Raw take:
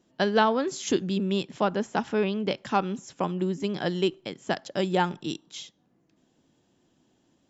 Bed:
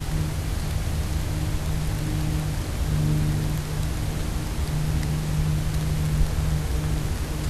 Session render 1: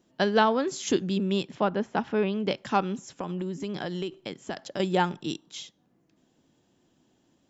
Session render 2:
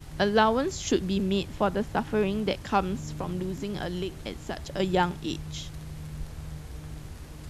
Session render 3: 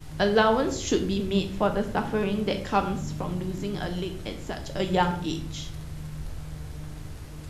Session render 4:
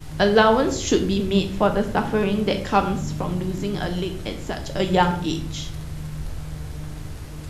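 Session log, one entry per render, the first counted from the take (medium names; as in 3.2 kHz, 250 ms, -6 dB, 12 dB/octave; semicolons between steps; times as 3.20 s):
1.55–2.34 s: distance through air 150 m; 3.10–4.80 s: compression, threshold -28 dBFS
add bed -15 dB
simulated room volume 85 m³, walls mixed, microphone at 0.47 m
trim +5 dB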